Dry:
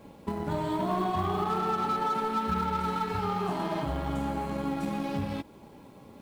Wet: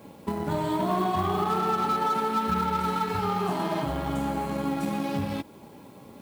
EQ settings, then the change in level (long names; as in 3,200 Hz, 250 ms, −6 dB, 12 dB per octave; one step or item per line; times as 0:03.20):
high-pass filter 80 Hz
high-shelf EQ 8,600 Hz +7 dB
+3.0 dB